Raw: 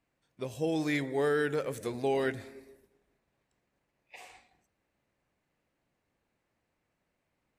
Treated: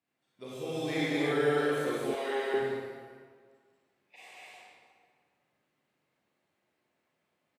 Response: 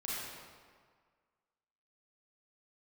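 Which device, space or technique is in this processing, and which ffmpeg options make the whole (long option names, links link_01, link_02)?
stadium PA: -filter_complex "[0:a]highpass=140,equalizer=frequency=3400:width_type=o:width=0.57:gain=4,aecho=1:1:189.5|250.7:0.794|0.562[link_01];[1:a]atrim=start_sample=2205[link_02];[link_01][link_02]afir=irnorm=-1:irlink=0,asettb=1/sr,asplit=3[link_03][link_04][link_05];[link_03]atrim=end=2.144[link_06];[link_04]atrim=start=2.14:end=2.54,asetpts=PTS-STARTPTS,afade=type=in:duration=0.004:curve=qsin,afade=type=out:start_time=0.396:duration=0.004:curve=qsin,highpass=490[link_07];[link_05]atrim=start=2.536[link_08];[link_06][link_07]acrossfade=duration=0.004:curve1=hsin:curve2=qsin[link_09];[link_09][link_08]acrossfade=duration=0.004:curve1=qsin:curve2=hsin,volume=-3.5dB"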